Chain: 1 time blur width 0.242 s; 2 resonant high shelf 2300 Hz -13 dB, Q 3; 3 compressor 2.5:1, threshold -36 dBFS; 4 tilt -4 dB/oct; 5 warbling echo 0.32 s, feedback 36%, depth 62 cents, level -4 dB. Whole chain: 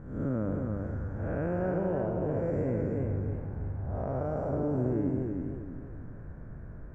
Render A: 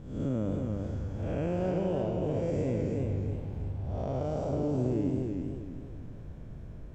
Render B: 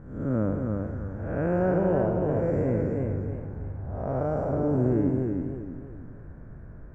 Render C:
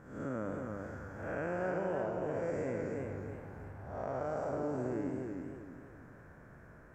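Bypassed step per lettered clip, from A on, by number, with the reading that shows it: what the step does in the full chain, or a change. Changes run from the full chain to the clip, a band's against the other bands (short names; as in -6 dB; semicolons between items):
2, 2 kHz band -4.5 dB; 3, momentary loudness spread change +5 LU; 4, 125 Hz band -9.5 dB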